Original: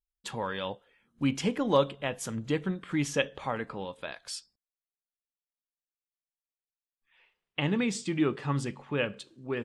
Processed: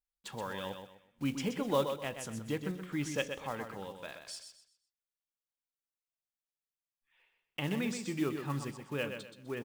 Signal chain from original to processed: block-companded coder 5-bit; feedback delay 126 ms, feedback 30%, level -7.5 dB; trim -6.5 dB

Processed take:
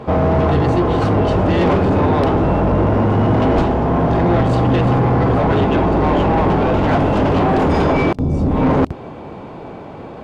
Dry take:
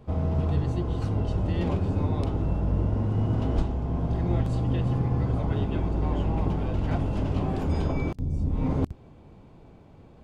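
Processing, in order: overdrive pedal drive 28 dB, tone 1.2 kHz, clips at -11.5 dBFS; trim +6.5 dB

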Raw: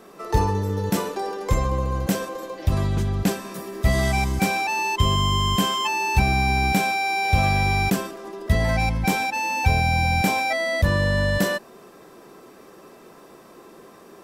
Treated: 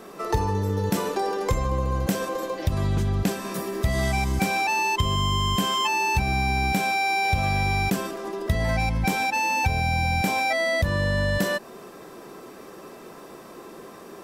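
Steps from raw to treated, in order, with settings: compression 4:1, threshold -25 dBFS, peak gain reduction 11 dB; trim +4 dB

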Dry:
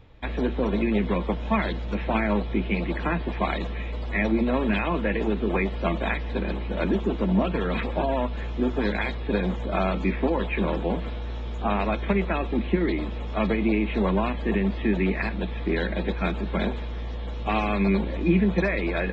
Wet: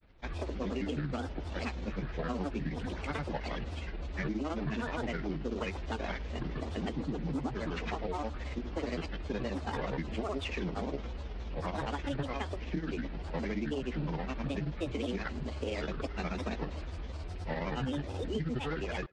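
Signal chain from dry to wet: CVSD coder 32 kbps; granulator 100 ms, grains 19 per s, pitch spread up and down by 7 st; compression, threshold -24 dBFS, peak gain reduction 7.5 dB; speakerphone echo 100 ms, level -27 dB; trim -6.5 dB

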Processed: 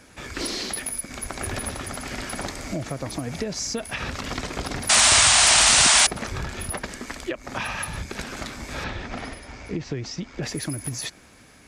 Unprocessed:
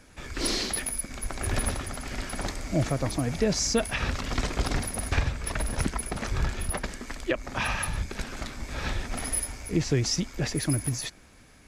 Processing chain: high-pass 110 Hz 6 dB/octave; compression 6:1, threshold -31 dBFS, peak gain reduction 11 dB; 4.89–6.07 s: painted sound noise 590–9600 Hz -21 dBFS; 8.84–10.43 s: distance through air 130 m; trim +5 dB

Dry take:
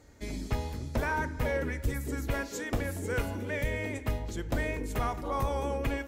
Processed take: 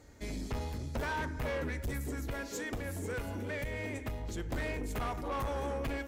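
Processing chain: 2.08–4.37 s: compression, threshold -31 dBFS, peak gain reduction 6.5 dB; saturation -31 dBFS, distortion -10 dB

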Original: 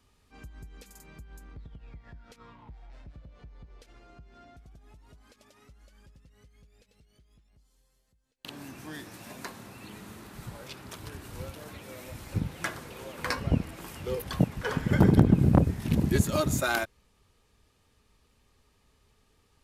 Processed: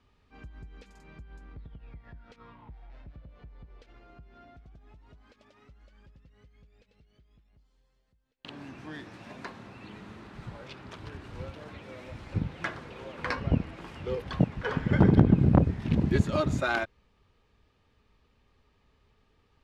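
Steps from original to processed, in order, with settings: low-pass 3.5 kHz 12 dB/octave

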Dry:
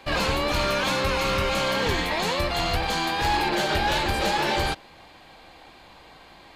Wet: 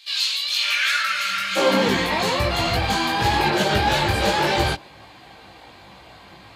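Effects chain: high-pass sweep 3.8 kHz -> 92 Hz, 0.52–2.17 s; spectral replace 0.74–1.54 s, 230–1300 Hz before; chorus voices 6, 1.2 Hz, delay 18 ms, depth 3 ms; trim +6.5 dB

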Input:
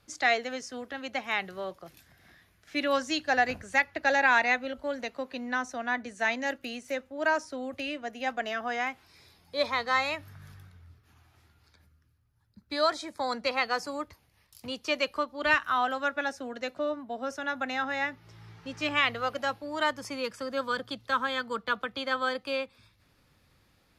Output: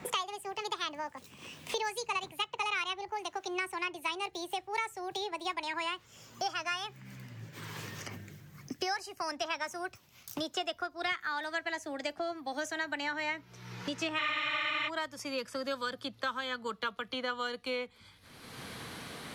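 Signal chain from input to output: gliding tape speed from 161% -> 87%; spectral freeze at 14.21 s, 0.66 s; three bands compressed up and down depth 100%; trim -6.5 dB

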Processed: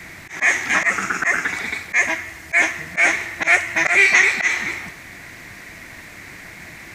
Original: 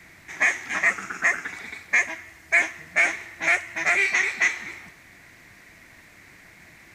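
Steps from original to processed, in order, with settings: slow attack 116 ms; in parallel at -1 dB: peak limiter -21.5 dBFS, peak gain reduction 10.5 dB; on the sum: trim +6 dB

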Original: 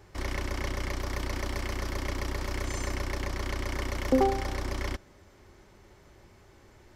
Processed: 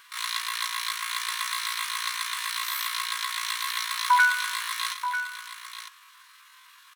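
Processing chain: brick-wall FIR high-pass 500 Hz; delay 944 ms -10 dB; pitch shift +11 st; trim +8.5 dB

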